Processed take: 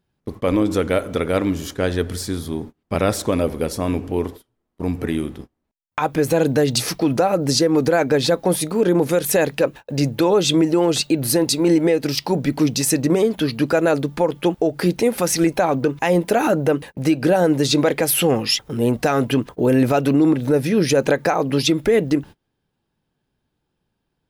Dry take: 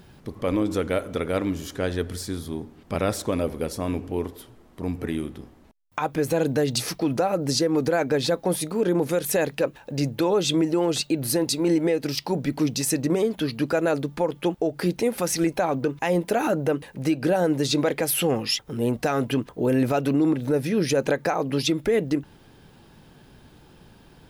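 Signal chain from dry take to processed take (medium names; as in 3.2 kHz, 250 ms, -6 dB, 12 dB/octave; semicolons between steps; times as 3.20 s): gate -38 dBFS, range -29 dB; trim +5.5 dB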